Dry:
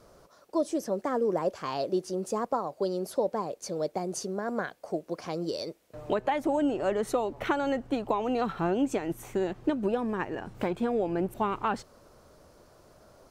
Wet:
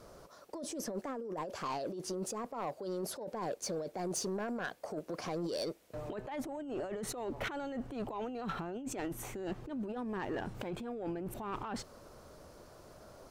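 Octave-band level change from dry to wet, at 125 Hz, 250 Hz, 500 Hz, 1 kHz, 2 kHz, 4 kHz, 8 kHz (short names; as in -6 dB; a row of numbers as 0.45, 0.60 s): -5.5, -9.0, -10.0, -9.5, -6.5, -3.5, 0.0 dB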